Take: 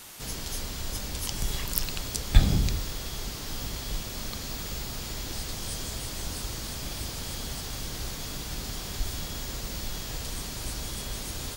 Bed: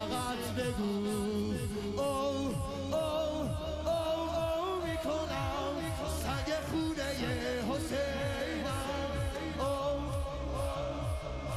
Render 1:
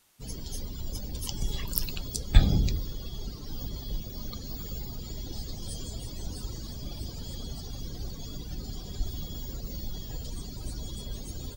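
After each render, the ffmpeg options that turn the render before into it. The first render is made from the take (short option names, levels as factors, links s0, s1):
-af "afftdn=nr=20:nf=-37"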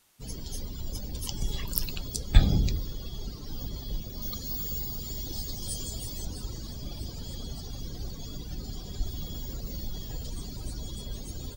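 -filter_complex "[0:a]asettb=1/sr,asplit=3[s0][s1][s2];[s0]atrim=end=4.224[s3];[s1]atrim=start=4.22:end=6.25,asetpts=PTS-STARTPTS,afade=t=in:d=0.004:c=qsin,afade=t=out:st=2.026:d=0.004:c=qsin,highshelf=f=5900:g=10[s4];[s2]atrim=start=6.246[s5];[s3][s4]acrossfade=d=0.004:c1=hsin:c2=qsin[s6];[s6][s5]acrossfade=d=0.004:c1=qsin:c2=hsin,asettb=1/sr,asplit=3[s7][s8][s9];[s7]atrim=end=9.204[s10];[s8]atrim=start=9.2:end=10.63,asetpts=PTS-STARTPTS,afade=t=in:d=0.004:c=qsin,afade=t=out:st=1.426:d=0.004:c=qsin,aeval=exprs='val(0)+0.5*0.00299*sgn(val(0))':c=same[s11];[s9]atrim=start=10.626[s12];[s10][s11]acrossfade=d=0.004:c1=hsin:c2=qsin[s13];[s13][s12]acrossfade=d=0.004:c1=qsin:c2=hsin"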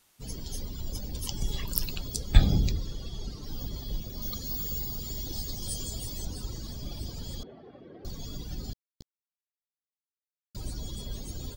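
-filter_complex "[0:a]asettb=1/sr,asplit=3[s0][s1][s2];[s0]atrim=end=2.724[s3];[s1]atrim=start=2.72:end=3.43,asetpts=PTS-STARTPTS,afade=t=in:d=0.004:c=qsin,afade=t=out:st=0.706:d=0.004:c=qsin,lowpass=11000[s4];[s2]atrim=start=3.426[s5];[s3][s4]acrossfade=d=0.004:c1=hsin:c2=qsin[s6];[s6][s5]acrossfade=d=0.004:c1=qsin:c2=hsin,asettb=1/sr,asplit=3[s7][s8][s9];[s7]atrim=end=7.434[s10];[s8]atrim=start=7.43:end=8.05,asetpts=PTS-STARTPTS,afade=t=in:d=0.004:c=qsin,afade=t=out:st=0.616:d=0.004:c=qsin,highpass=310,equalizer=f=370:t=q:w=4:g=5,equalizer=f=600:t=q:w=4:g=5,equalizer=f=920:t=q:w=4:g=-6,equalizer=f=1400:t=q:w=4:g=-4,lowpass=f=2000:w=0.5412,lowpass=f=2000:w=1.3066[s11];[s9]atrim=start=8.046[s12];[s10][s11]acrossfade=d=0.004:c1=hsin:c2=qsin[s13];[s13][s12]acrossfade=d=0.004:c1=qsin:c2=hsin,asettb=1/sr,asplit=3[s14][s15][s16];[s14]atrim=end=8.734[s17];[s15]atrim=start=8.73:end=10.55,asetpts=PTS-STARTPTS,afade=t=in:d=0.004:c=qsin,afade=t=out:st=1.816:d=0.004:c=qsin,acrusher=bits=2:mix=0:aa=0.5[s18];[s16]atrim=start=10.546[s19];[s17][s18]acrossfade=d=0.004:c1=hsin:c2=qsin[s20];[s20][s19]acrossfade=d=0.004:c1=qsin:c2=hsin"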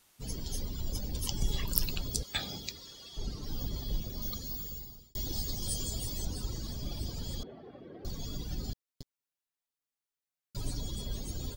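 -filter_complex "[0:a]asettb=1/sr,asplit=3[s0][s1][s2];[s0]atrim=end=2.234[s3];[s1]atrim=start=2.23:end=3.17,asetpts=PTS-STARTPTS,afade=t=in:d=0.004:c=qsin,afade=t=out:st=0.936:d=0.004:c=qsin,highpass=f=1400:p=1[s4];[s2]atrim=start=3.166[s5];[s3][s4]acrossfade=d=0.004:c1=hsin:c2=qsin[s6];[s6][s5]acrossfade=d=0.004:c1=qsin:c2=hsin,asettb=1/sr,asplit=3[s7][s8][s9];[s7]atrim=end=8.874[s10];[s8]atrim=start=8.87:end=10.81,asetpts=PTS-STARTPTS,afade=t=in:d=0.004:c=qsin,afade=t=out:st=1.936:d=0.004:c=qsin,aecho=1:1:7.2:0.67,atrim=end_sample=85554[s11];[s9]atrim=start=10.806[s12];[s10][s11]acrossfade=d=0.004:c1=hsin:c2=qsin[s13];[s13][s12]acrossfade=d=0.004:c1=qsin:c2=hsin,asplit=2[s14][s15];[s14]atrim=end=5.15,asetpts=PTS-STARTPTS,afade=t=out:st=4.05:d=1.1[s16];[s15]atrim=start=5.15,asetpts=PTS-STARTPTS,afade=t=in:d=0.004:c=hsin[s17];[s16][s17]concat=n=2:v=0:a=1"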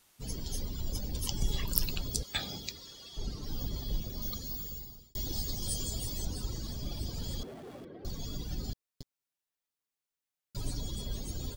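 -filter_complex "[0:a]asettb=1/sr,asplit=3[s0][s1][s2];[s0]atrim=end=7.134[s3];[s1]atrim=start=7.13:end=7.85,asetpts=PTS-STARTPTS,afade=t=in:d=0.004:c=qsin,afade=t=out:st=0.716:d=0.004:c=qsin,aeval=exprs='val(0)+0.5*0.00355*sgn(val(0))':c=same[s4];[s2]atrim=start=7.846[s5];[s3][s4]acrossfade=d=0.004:c1=hsin:c2=qsin[s6];[s6][s5]acrossfade=d=0.004:c1=qsin:c2=hsin"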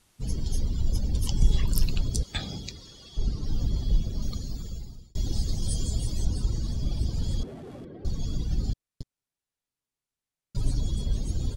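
-af "lowpass=f=12000:w=0.5412,lowpass=f=12000:w=1.3066,lowshelf=f=260:g=11.5"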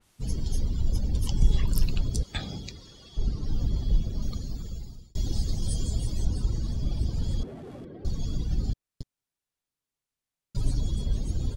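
-af "adynamicequalizer=threshold=0.002:dfrequency=3000:dqfactor=0.7:tfrequency=3000:tqfactor=0.7:attack=5:release=100:ratio=0.375:range=2:mode=cutabove:tftype=highshelf"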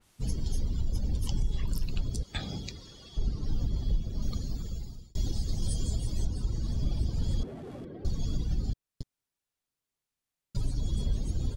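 -af "alimiter=limit=0.106:level=0:latency=1:release=390"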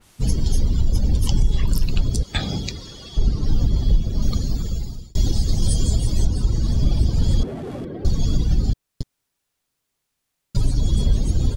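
-af "volume=3.76"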